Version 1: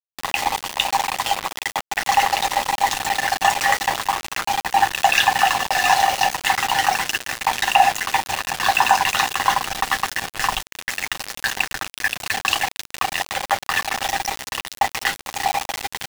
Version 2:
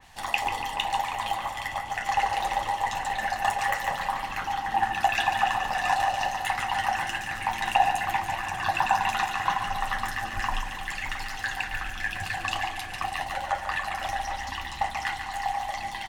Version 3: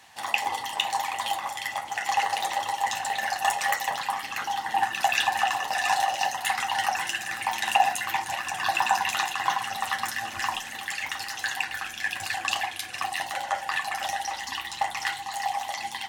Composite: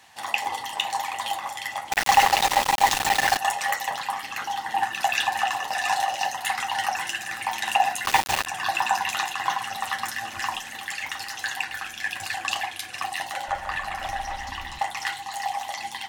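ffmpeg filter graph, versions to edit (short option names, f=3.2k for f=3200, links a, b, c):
-filter_complex "[0:a]asplit=2[a][b];[2:a]asplit=4[c][d][e][f];[c]atrim=end=1.922[g];[a]atrim=start=1.918:end=3.372[h];[d]atrim=start=3.368:end=8.052[i];[b]atrim=start=8.048:end=8.462[j];[e]atrim=start=8.458:end=13.482[k];[1:a]atrim=start=13.478:end=14.792[l];[f]atrim=start=14.788[m];[g][h]acrossfade=d=0.004:c1=hsin:c2=hsin[n];[n][i]acrossfade=d=0.004:c1=hsin:c2=hsin[o];[o][j]acrossfade=d=0.004:c1=hsin:c2=hsin[p];[p][k]acrossfade=d=0.004:c1=hsin:c2=hsin[q];[q][l]acrossfade=d=0.004:c1=hsin:c2=hsin[r];[r][m]acrossfade=d=0.004:c1=hsin:c2=hsin"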